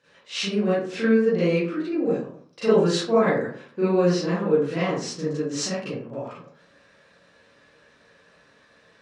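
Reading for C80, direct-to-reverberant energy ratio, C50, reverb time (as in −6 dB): 5.0 dB, −12.5 dB, −2.0 dB, 0.50 s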